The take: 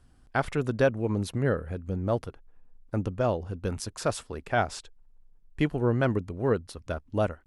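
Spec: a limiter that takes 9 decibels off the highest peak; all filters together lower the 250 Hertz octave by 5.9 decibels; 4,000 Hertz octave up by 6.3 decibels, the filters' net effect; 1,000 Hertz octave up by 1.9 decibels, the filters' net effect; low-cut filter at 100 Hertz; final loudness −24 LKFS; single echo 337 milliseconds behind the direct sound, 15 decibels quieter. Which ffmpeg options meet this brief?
ffmpeg -i in.wav -af "highpass=100,equalizer=frequency=250:width_type=o:gain=-8,equalizer=frequency=1000:width_type=o:gain=3,equalizer=frequency=4000:width_type=o:gain=8,alimiter=limit=-17.5dB:level=0:latency=1,aecho=1:1:337:0.178,volume=8.5dB" out.wav

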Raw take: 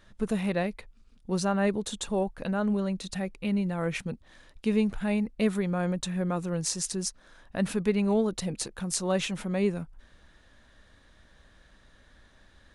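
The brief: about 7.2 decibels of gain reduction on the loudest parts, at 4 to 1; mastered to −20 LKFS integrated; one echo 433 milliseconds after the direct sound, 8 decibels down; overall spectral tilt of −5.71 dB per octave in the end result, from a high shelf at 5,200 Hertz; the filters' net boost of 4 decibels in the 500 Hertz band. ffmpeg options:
ffmpeg -i in.wav -af "equalizer=frequency=500:width_type=o:gain=5,highshelf=frequency=5200:gain=-8.5,acompressor=threshold=-26dB:ratio=4,aecho=1:1:433:0.398,volume=11.5dB" out.wav

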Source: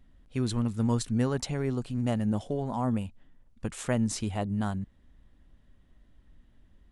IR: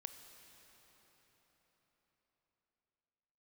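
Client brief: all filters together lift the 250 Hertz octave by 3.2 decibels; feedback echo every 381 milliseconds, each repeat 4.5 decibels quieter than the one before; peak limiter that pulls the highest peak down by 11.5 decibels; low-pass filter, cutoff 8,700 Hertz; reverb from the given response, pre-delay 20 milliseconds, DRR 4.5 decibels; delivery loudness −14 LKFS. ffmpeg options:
-filter_complex "[0:a]lowpass=8700,equalizer=frequency=250:width_type=o:gain=3.5,alimiter=limit=-24dB:level=0:latency=1,aecho=1:1:381|762|1143|1524|1905|2286|2667|3048|3429:0.596|0.357|0.214|0.129|0.0772|0.0463|0.0278|0.0167|0.01,asplit=2[link_01][link_02];[1:a]atrim=start_sample=2205,adelay=20[link_03];[link_02][link_03]afir=irnorm=-1:irlink=0,volume=0dB[link_04];[link_01][link_04]amix=inputs=2:normalize=0,volume=17.5dB"

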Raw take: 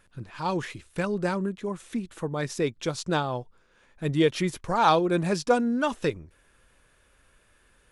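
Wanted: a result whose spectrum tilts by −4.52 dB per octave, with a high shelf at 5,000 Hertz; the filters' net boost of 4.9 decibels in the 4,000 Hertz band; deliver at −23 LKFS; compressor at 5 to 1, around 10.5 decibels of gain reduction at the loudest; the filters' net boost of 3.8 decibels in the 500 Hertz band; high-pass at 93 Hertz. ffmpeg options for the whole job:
ffmpeg -i in.wav -af "highpass=93,equalizer=frequency=500:width_type=o:gain=4.5,equalizer=frequency=4000:width_type=o:gain=8,highshelf=frequency=5000:gain=-5,acompressor=threshold=-25dB:ratio=5,volume=8dB" out.wav

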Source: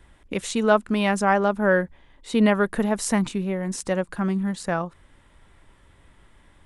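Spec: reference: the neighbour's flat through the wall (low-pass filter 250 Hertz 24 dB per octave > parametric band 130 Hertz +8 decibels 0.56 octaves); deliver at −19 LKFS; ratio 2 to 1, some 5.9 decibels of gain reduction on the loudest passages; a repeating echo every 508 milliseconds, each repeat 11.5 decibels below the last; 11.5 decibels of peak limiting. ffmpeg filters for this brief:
ffmpeg -i in.wav -af "acompressor=threshold=-24dB:ratio=2,alimiter=limit=-23dB:level=0:latency=1,lowpass=frequency=250:width=0.5412,lowpass=frequency=250:width=1.3066,equalizer=frequency=130:width_type=o:width=0.56:gain=8,aecho=1:1:508|1016|1524:0.266|0.0718|0.0194,volume=15.5dB" out.wav

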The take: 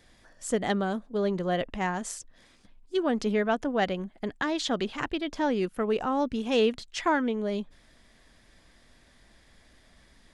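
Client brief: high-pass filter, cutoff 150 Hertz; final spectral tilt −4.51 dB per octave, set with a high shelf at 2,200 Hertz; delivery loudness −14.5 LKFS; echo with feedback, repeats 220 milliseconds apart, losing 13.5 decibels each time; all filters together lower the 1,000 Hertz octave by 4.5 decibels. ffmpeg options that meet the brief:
ffmpeg -i in.wav -af "highpass=150,equalizer=frequency=1000:width_type=o:gain=-5,highshelf=frequency=2200:gain=-5.5,aecho=1:1:220|440:0.211|0.0444,volume=16dB" out.wav

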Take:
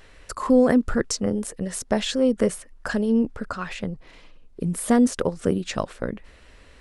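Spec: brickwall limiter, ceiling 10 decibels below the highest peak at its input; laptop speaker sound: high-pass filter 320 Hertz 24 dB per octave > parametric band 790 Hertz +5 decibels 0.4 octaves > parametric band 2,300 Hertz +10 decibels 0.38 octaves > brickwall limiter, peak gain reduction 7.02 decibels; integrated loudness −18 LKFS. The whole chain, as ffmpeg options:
ffmpeg -i in.wav -af "alimiter=limit=-14dB:level=0:latency=1,highpass=frequency=320:width=0.5412,highpass=frequency=320:width=1.3066,equalizer=frequency=790:width_type=o:width=0.4:gain=5,equalizer=frequency=2300:width_type=o:width=0.38:gain=10,volume=12.5dB,alimiter=limit=-6dB:level=0:latency=1" out.wav

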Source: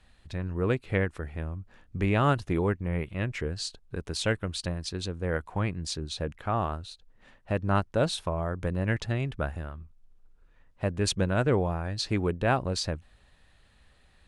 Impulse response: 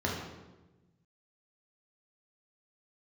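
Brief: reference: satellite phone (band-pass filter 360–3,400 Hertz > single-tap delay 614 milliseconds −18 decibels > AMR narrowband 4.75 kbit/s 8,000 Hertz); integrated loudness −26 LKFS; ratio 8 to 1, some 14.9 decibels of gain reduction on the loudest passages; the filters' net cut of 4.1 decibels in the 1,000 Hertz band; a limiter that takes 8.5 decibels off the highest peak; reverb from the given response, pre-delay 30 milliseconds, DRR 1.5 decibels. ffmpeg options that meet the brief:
-filter_complex "[0:a]equalizer=frequency=1000:width_type=o:gain=-5.5,acompressor=threshold=-37dB:ratio=8,alimiter=level_in=10dB:limit=-24dB:level=0:latency=1,volume=-10dB,asplit=2[link_01][link_02];[1:a]atrim=start_sample=2205,adelay=30[link_03];[link_02][link_03]afir=irnorm=-1:irlink=0,volume=-10dB[link_04];[link_01][link_04]amix=inputs=2:normalize=0,highpass=360,lowpass=3400,aecho=1:1:614:0.126,volume=24.5dB" -ar 8000 -c:a libopencore_amrnb -b:a 4750

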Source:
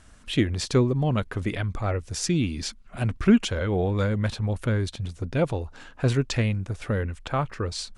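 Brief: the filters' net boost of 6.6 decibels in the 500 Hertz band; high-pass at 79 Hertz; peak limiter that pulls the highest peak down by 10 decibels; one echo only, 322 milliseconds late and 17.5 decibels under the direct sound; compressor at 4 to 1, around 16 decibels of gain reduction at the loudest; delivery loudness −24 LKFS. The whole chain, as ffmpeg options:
ffmpeg -i in.wav -af "highpass=79,equalizer=frequency=500:width_type=o:gain=8,acompressor=threshold=-31dB:ratio=4,alimiter=level_in=1.5dB:limit=-24dB:level=0:latency=1,volume=-1.5dB,aecho=1:1:322:0.133,volume=12.5dB" out.wav

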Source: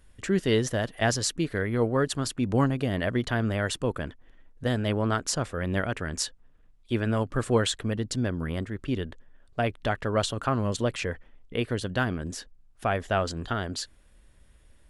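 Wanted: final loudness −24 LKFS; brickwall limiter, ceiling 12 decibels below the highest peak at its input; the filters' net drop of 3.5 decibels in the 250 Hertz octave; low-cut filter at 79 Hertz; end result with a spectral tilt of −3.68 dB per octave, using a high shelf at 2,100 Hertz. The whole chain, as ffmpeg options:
ffmpeg -i in.wav -af "highpass=79,equalizer=frequency=250:width_type=o:gain=-4.5,highshelf=frequency=2100:gain=8,volume=5.5dB,alimiter=limit=-10.5dB:level=0:latency=1" out.wav

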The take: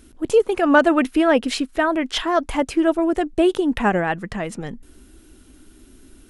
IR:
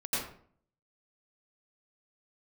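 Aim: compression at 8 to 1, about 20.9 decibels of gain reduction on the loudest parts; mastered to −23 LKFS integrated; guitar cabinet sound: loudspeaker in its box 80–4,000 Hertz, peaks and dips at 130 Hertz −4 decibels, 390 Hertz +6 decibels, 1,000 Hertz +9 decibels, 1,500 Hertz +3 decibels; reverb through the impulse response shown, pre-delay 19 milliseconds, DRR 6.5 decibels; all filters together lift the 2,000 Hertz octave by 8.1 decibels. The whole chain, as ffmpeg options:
-filter_complex "[0:a]equalizer=frequency=2000:width_type=o:gain=7.5,acompressor=threshold=-30dB:ratio=8,asplit=2[link_01][link_02];[1:a]atrim=start_sample=2205,adelay=19[link_03];[link_02][link_03]afir=irnorm=-1:irlink=0,volume=-13dB[link_04];[link_01][link_04]amix=inputs=2:normalize=0,highpass=80,equalizer=frequency=130:width_type=q:width=4:gain=-4,equalizer=frequency=390:width_type=q:width=4:gain=6,equalizer=frequency=1000:width_type=q:width=4:gain=9,equalizer=frequency=1500:width_type=q:width=4:gain=3,lowpass=frequency=4000:width=0.5412,lowpass=frequency=4000:width=1.3066,volume=7.5dB"

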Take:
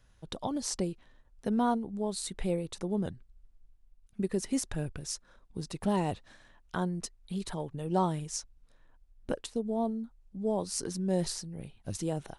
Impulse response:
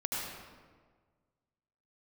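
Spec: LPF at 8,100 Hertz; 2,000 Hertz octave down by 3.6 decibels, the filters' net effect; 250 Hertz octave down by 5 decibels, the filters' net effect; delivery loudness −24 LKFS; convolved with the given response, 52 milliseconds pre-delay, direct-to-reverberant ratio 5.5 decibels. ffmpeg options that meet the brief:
-filter_complex "[0:a]lowpass=8100,equalizer=frequency=250:width_type=o:gain=-7,equalizer=frequency=2000:width_type=o:gain=-5,asplit=2[link_01][link_02];[1:a]atrim=start_sample=2205,adelay=52[link_03];[link_02][link_03]afir=irnorm=-1:irlink=0,volume=-10.5dB[link_04];[link_01][link_04]amix=inputs=2:normalize=0,volume=12.5dB"

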